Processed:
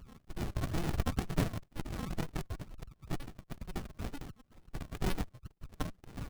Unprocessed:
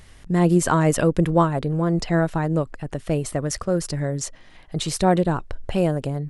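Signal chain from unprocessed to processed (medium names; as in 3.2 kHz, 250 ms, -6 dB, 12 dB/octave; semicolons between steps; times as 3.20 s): random holes in the spectrogram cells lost 53%; dynamic bell 190 Hz, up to -6 dB, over -35 dBFS, Q 1.7; saturation -12.5 dBFS, distortion -20 dB; spectral gate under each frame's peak -15 dB strong; static phaser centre 680 Hz, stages 4; ring modulator 1.3 kHz; bass shelf 310 Hz +11 dB; decimation with a swept rate 28×, swing 100% 2.1 Hz; comb 1.7 ms, depth 31%; sliding maximum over 65 samples; trim -2.5 dB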